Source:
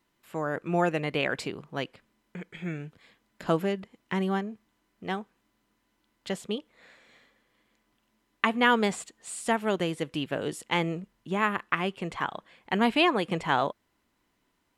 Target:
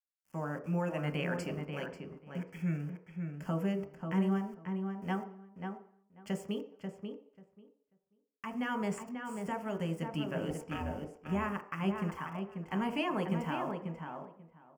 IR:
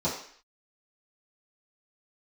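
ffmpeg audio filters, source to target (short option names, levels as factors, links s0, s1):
-filter_complex "[0:a]asettb=1/sr,asplit=3[s0][s1][s2];[s0]atrim=end=8.984[s3];[s1]atrim=start=8.98:end=9.51,asetpts=PTS-STARTPTS,afade=t=in:d=0.004:c=qsin,afade=t=out:st=0.526:d=0.004:c=qsin,aemphasis=mode=reproduction:type=50fm[s4];[s2]atrim=start=9.506[s5];[s3][s4]acrossfade=d=0.004:c1=hsin:c2=qsin[s6];[s6][s5]acrossfade=d=0.004:c1=qsin:c2=hsin,asettb=1/sr,asplit=3[s7][s8][s9];[s7]atrim=end=10.504[s10];[s8]atrim=start=10.5:end=11.17,asetpts=PTS-STARTPTS,afade=t=in:d=0.004:c=qsin,afade=t=out:st=0.666:d=0.004:c=qsin,aeval=exprs='val(0)*sin(2*PI*410*n/s)':c=same[s11];[s9]atrim=start=11.166[s12];[s10][s11]acrossfade=d=0.004:c1=hsin:c2=qsin[s13];[s13][s12]acrossfade=d=0.004:c1=qsin:c2=hsin,asoftclip=type=tanh:threshold=0.422,alimiter=limit=0.119:level=0:latency=1:release=147,tremolo=f=0.77:d=0.34,aeval=exprs='val(0)*gte(abs(val(0)),0.00376)':c=same,asuperstop=centerf=3800:order=4:qfactor=2.4,asplit=2[s14][s15];[s15]adelay=539,lowpass=f=2300:p=1,volume=0.531,asplit=2[s16][s17];[s17]adelay=539,lowpass=f=2300:p=1,volume=0.16,asplit=2[s18][s19];[s19]adelay=539,lowpass=f=2300:p=1,volume=0.16[s20];[s14][s16][s18][s20]amix=inputs=4:normalize=0,asplit=2[s21][s22];[1:a]atrim=start_sample=2205,highshelf=f=2800:g=-10[s23];[s22][s23]afir=irnorm=-1:irlink=0,volume=0.224[s24];[s21][s24]amix=inputs=2:normalize=0,volume=0.473"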